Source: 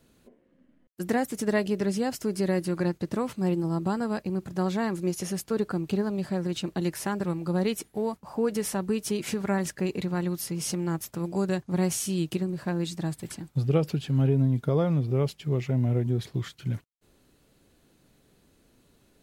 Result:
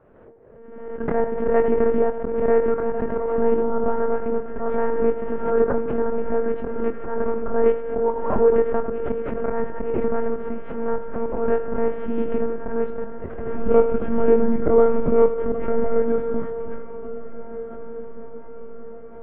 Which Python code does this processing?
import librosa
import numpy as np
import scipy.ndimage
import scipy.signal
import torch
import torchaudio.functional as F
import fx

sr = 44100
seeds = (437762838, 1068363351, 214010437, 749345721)

p1 = fx.envelope_flatten(x, sr, power=0.6)
p2 = np.sign(p1) * np.maximum(np.abs(p1) - 10.0 ** (-37.5 / 20.0), 0.0)
p3 = p1 + F.gain(torch.from_numpy(p2), -3.5).numpy()
p4 = scipy.signal.sosfilt(scipy.signal.butter(4, 1600.0, 'lowpass', fs=sr, output='sos'), p3)
p5 = fx.echo_feedback(p4, sr, ms=84, feedback_pct=49, wet_db=-12.5)
p6 = fx.lpc_monotone(p5, sr, seeds[0], pitch_hz=230.0, order=10)
p7 = fx.peak_eq(p6, sr, hz=500.0, db=10.5, octaves=1.3)
p8 = fx.auto_swell(p7, sr, attack_ms=120.0)
p9 = fx.doubler(p8, sr, ms=24.0, db=-9.0)
p10 = fx.echo_diffused(p9, sr, ms=1639, feedback_pct=57, wet_db=-14.5)
y = fx.pre_swell(p10, sr, db_per_s=44.0)